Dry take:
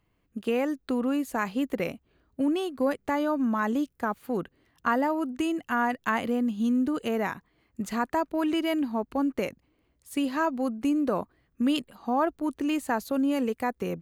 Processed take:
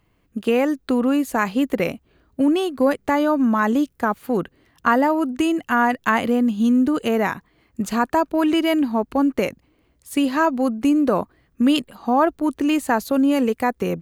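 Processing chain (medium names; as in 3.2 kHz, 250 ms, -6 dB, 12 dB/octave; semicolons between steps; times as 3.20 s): 7.84–8.35 s: band-stop 2 kHz, Q 8.2; trim +8 dB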